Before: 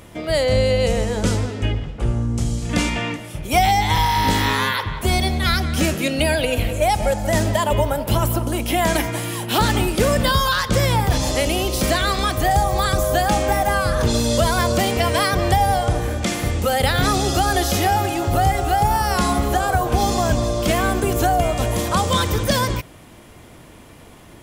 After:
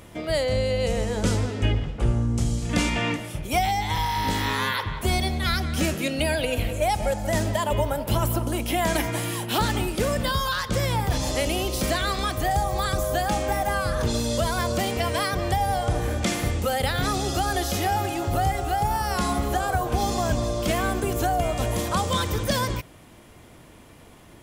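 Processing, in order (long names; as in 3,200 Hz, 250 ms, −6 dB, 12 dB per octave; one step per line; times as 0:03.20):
speech leveller
level −5.5 dB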